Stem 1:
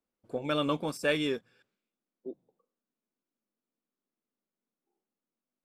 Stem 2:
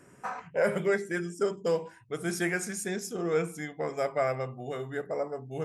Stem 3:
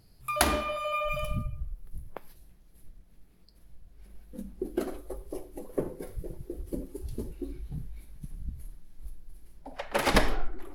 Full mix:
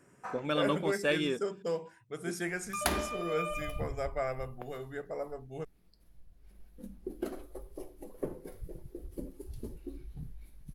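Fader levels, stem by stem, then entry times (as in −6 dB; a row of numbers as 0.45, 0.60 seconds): −1.5, −6.0, −6.0 decibels; 0.00, 0.00, 2.45 seconds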